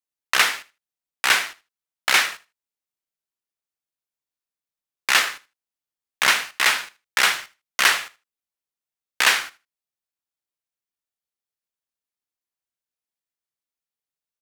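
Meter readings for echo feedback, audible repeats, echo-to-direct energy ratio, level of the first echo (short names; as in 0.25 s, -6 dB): no steady repeat, 1, -19.5 dB, -19.5 dB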